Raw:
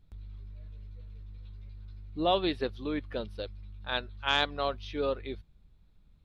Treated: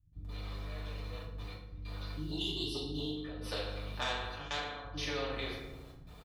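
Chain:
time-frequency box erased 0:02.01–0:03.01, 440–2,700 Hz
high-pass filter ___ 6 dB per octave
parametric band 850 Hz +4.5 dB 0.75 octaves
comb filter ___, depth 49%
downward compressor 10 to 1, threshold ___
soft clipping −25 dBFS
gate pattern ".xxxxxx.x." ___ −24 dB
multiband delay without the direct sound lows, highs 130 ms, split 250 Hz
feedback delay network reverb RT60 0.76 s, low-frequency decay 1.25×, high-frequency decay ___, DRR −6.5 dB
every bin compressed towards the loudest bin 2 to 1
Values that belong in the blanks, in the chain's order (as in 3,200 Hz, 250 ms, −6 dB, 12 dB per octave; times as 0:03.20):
56 Hz, 1.7 ms, −38 dBFS, 96 BPM, 0.65×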